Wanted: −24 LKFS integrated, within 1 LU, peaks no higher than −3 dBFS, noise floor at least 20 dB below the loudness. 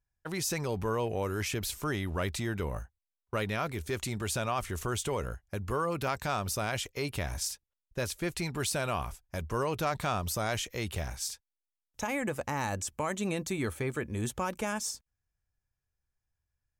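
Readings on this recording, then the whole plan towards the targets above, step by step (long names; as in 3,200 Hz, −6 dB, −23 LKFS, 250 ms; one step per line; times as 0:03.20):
integrated loudness −33.5 LKFS; sample peak −18.5 dBFS; target loudness −24.0 LKFS
→ level +9.5 dB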